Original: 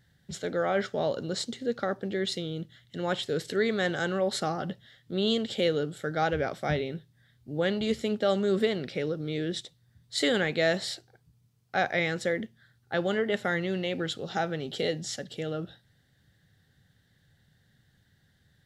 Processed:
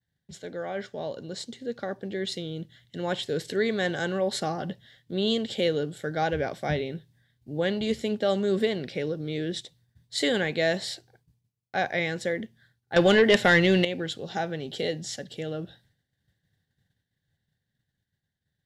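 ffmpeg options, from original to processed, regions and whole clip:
-filter_complex "[0:a]asettb=1/sr,asplit=3[a][b][c];[a]atrim=end=12.964[d];[b]atrim=start=12.96:end=13.85,asetpts=PTS-STARTPTS,afade=t=in:d=0.004:c=qsin,afade=t=out:st=0.886:d=0.004:c=qsin,equalizer=f=3.4k:t=o:w=2.5:g=4.5,aeval=exprs='0.282*sin(PI/2*2*val(0)/0.282)':c=same[e];[c]atrim=start=13.846[f];[d][e]acrossfade=d=0.004:c1=hsin:c2=qsin[g];[g][f]acrossfade=d=0.004:c1=qsin:c2=hsin,bandreject=f=1.3k:w=6,agate=range=-33dB:threshold=-57dB:ratio=3:detection=peak,dynaudnorm=f=130:g=31:m=7dB,volume=-6dB"

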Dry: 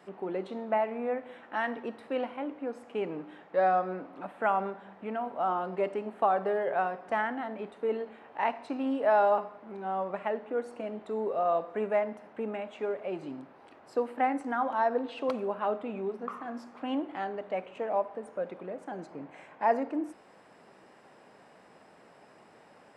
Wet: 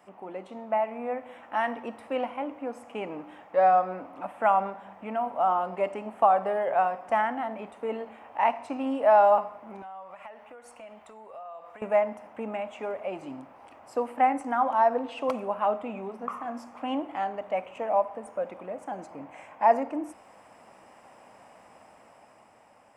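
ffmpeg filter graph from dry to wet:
-filter_complex "[0:a]asettb=1/sr,asplit=3[a][b][c];[a]atrim=end=9.824[d];[b]atrim=start=9.82:end=11.82,asetpts=PTS-STARTPTS,afade=t=in:d=0.004:c=qsin,afade=t=out:st=1.996:d=0.004:c=qsin,equalizer=f=270:w=0.48:g=-14,acompressor=threshold=-44dB:ratio=8:attack=3.2:release=140:knee=1:detection=peak[e];[c]atrim=start=11.816[f];[d][e]acrossfade=d=0.004:c1=hsin:c2=qsin[g];[g][f]acrossfade=d=0.004:c1=qsin:c2=hsin,equalizer=f=270:t=o:w=0.77:g=-2.5,dynaudnorm=f=240:g=9:m=5dB,equalizer=f=160:t=o:w=0.67:g=-11,equalizer=f=400:t=o:w=0.67:g=-12,equalizer=f=1.6k:t=o:w=0.67:g=-8,equalizer=f=4k:t=o:w=0.67:g=-12,volume=3.5dB"

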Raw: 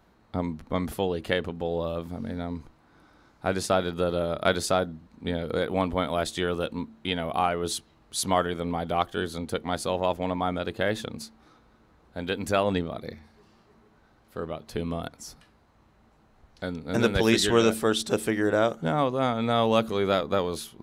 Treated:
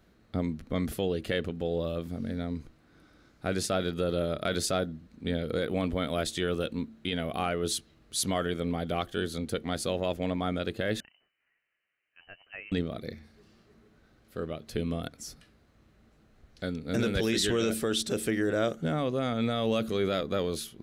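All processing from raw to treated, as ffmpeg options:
-filter_complex "[0:a]asettb=1/sr,asplit=3[a][b][c];[a]atrim=end=11.004[d];[b]atrim=start=11:end=12.72,asetpts=PTS-STARTPTS,afade=t=in:d=0.004:c=qsin,afade=t=out:st=1.716:d=0.004:c=qsin,aderivative,lowpass=f=2.7k:t=q:w=0.5098,lowpass=f=2.7k:t=q:w=0.6013,lowpass=f=2.7k:t=q:w=0.9,lowpass=f=2.7k:t=q:w=2.563,afreqshift=-3200[e];[c]atrim=start=12.716[f];[d][e]acrossfade=d=0.004:c1=hsin:c2=qsin[g];[g][f]acrossfade=d=0.004:c1=qsin:c2=hsin,equalizer=f=920:w=2.1:g=-12.5,alimiter=limit=-18.5dB:level=0:latency=1:release=10"

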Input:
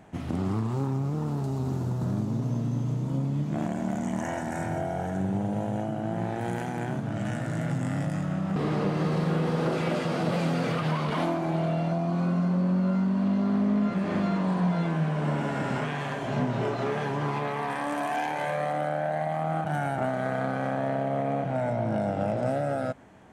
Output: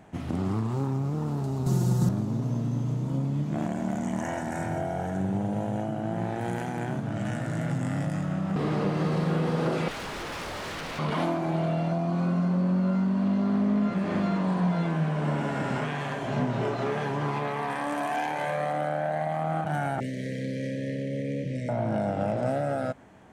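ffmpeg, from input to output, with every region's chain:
-filter_complex "[0:a]asettb=1/sr,asplit=3[a][b][c];[a]atrim=end=1.664[d];[b]atrim=start=1.66:end=2.09,asetpts=PTS-STARTPTS,afade=t=in:d=0.004:c=qsin,afade=t=out:st=0.426:d=0.004:c=qsin,bass=f=250:g=5,treble=f=4k:g=13,aecho=1:1:5.6:0.77,atrim=end_sample=18963[e];[c]atrim=start=2.086[f];[d][e]acrossfade=d=0.004:c1=hsin:c2=qsin[g];[g][f]acrossfade=d=0.004:c1=qsin:c2=hsin,asettb=1/sr,asplit=3[h][i][j];[h]atrim=end=9.884[k];[i]atrim=start=9.88:end=10.99,asetpts=PTS-STARTPTS,afade=t=in:d=0.004:c=qsin,afade=t=out:st=1.106:d=0.004:c=qsin,aeval=exprs='0.0282*(abs(mod(val(0)/0.0282+3,4)-2)-1)':c=same,asplit=2[l][m];[m]adelay=26,volume=-12dB[n];[l][n]amix=inputs=2:normalize=0,atrim=end_sample=48951[o];[j]atrim=start=10.986[p];[k][o]acrossfade=d=0.004:c1=hsin:c2=qsin[q];[q][p]acrossfade=d=0.004:c1=qsin:c2=hsin,asettb=1/sr,asplit=3[r][s][t];[r]atrim=end=20.004[u];[s]atrim=start=20:end=21.69,asetpts=PTS-STARTPTS,afade=t=in:d=0.004:c=qsin,afade=t=out:st=1.686:d=0.004:c=qsin,asuperstop=centerf=1000:order=20:qfactor=0.85,equalizer=f=5.4k:w=1.7:g=8[v];[t]atrim=start=21.686[w];[u][v]acrossfade=d=0.004:c1=hsin:c2=qsin[x];[x][w]acrossfade=d=0.004:c1=qsin:c2=hsin"

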